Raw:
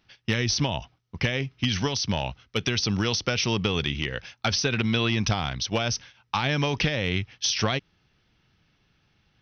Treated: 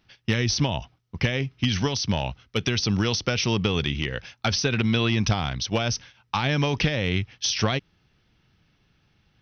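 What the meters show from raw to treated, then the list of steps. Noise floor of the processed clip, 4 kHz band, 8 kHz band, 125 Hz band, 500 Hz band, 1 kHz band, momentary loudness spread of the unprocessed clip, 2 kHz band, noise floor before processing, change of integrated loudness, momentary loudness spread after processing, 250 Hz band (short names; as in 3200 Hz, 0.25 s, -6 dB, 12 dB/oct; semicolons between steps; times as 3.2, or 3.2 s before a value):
-67 dBFS, 0.0 dB, n/a, +3.0 dB, +1.5 dB, +0.5 dB, 6 LU, 0.0 dB, -69 dBFS, +1.0 dB, 6 LU, +2.5 dB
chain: low shelf 420 Hz +3 dB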